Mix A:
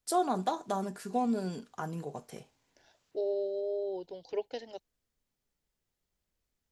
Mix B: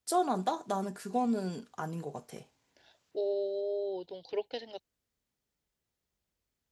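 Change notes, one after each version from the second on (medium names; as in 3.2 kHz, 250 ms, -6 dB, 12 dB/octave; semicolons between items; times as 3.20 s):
second voice: add resonant low-pass 3.9 kHz, resonance Q 2; master: add high-pass 46 Hz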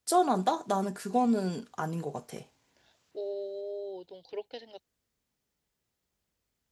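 first voice +4.0 dB; second voice -4.0 dB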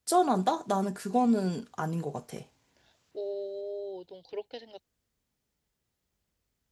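master: add bass shelf 170 Hz +5 dB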